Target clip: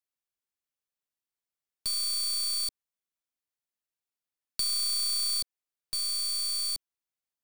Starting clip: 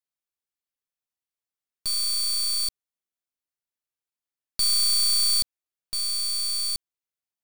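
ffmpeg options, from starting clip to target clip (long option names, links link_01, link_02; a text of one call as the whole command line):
ffmpeg -i in.wav -filter_complex "[0:a]acrossover=split=340|1500[link_01][link_02][link_03];[link_01]acompressor=threshold=-43dB:ratio=4[link_04];[link_02]acompressor=threshold=-52dB:ratio=4[link_05];[link_03]acompressor=threshold=-24dB:ratio=4[link_06];[link_04][link_05][link_06]amix=inputs=3:normalize=0,volume=-2dB" out.wav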